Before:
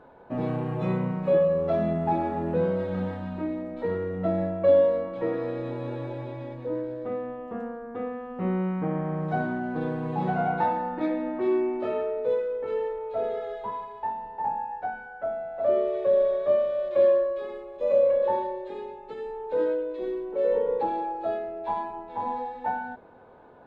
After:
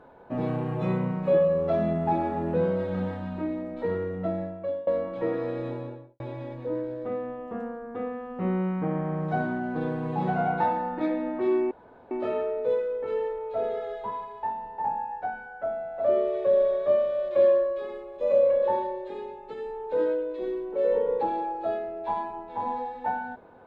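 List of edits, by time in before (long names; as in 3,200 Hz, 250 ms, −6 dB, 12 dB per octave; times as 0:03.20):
0:04.01–0:04.87: fade out, to −23.5 dB
0:05.64–0:06.20: fade out and dull
0:11.71: splice in room tone 0.40 s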